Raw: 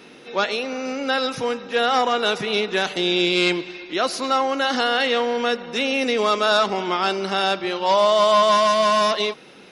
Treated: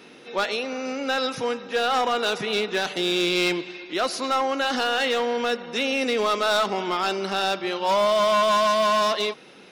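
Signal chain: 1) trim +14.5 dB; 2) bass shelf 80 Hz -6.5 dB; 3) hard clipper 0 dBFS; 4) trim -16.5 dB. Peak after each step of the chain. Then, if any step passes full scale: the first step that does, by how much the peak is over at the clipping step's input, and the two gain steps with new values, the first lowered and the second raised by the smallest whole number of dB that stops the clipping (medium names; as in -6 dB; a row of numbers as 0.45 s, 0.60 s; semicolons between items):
+7.5 dBFS, +7.5 dBFS, 0.0 dBFS, -16.5 dBFS; step 1, 7.5 dB; step 1 +6.5 dB, step 4 -8.5 dB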